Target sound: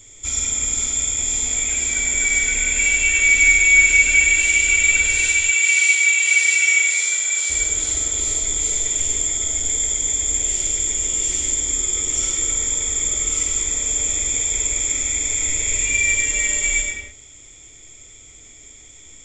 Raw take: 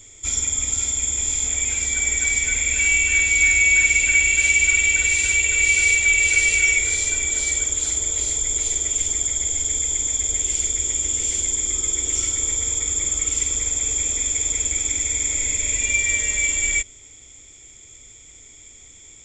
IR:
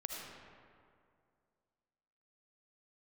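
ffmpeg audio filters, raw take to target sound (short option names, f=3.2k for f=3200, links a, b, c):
-filter_complex "[0:a]asettb=1/sr,asplit=3[a][b][c];[a]atrim=end=5.244[d];[b]atrim=start=5.24:end=7.5,asetpts=PTS-STARTPTS,afade=t=in:d=0.004:c=qsin,afade=t=out:st=2.256:d=0.004:c=qsin,highpass=900[e];[c]atrim=start=7.496[f];[d][e]acrossfade=d=0.004:c1=hsin:c2=qsin[g];[g][f]acrossfade=d=0.004:c1=qsin:c2=hsin[h];[1:a]atrim=start_sample=2205,afade=t=out:st=0.36:d=0.01,atrim=end_sample=16317[i];[h][i]afir=irnorm=-1:irlink=0,volume=3dB"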